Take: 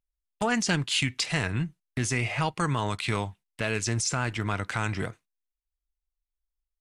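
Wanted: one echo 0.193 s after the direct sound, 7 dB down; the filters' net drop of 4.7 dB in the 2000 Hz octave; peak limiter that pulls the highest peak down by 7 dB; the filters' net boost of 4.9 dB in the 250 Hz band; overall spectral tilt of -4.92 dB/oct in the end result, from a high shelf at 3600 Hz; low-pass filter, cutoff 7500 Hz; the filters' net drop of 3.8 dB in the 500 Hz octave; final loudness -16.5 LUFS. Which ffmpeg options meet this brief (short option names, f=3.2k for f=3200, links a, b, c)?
-af "lowpass=7.5k,equalizer=f=250:t=o:g=8,equalizer=f=500:t=o:g=-7.5,equalizer=f=2k:t=o:g=-4.5,highshelf=f=3.6k:g=-4.5,alimiter=limit=-21dB:level=0:latency=1,aecho=1:1:193:0.447,volume=15dB"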